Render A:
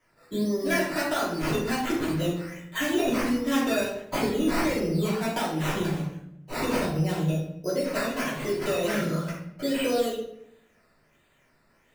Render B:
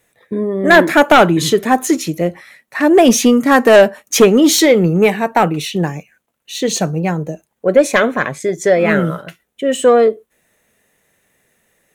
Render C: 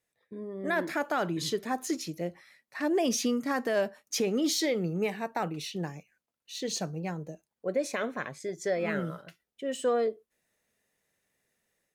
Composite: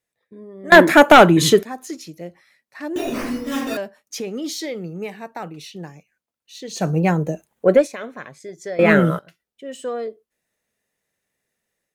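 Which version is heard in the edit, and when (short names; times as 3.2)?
C
0.72–1.63 from B
2.96–3.77 from A
6.83–7.8 from B, crossfade 0.16 s
8.79–9.19 from B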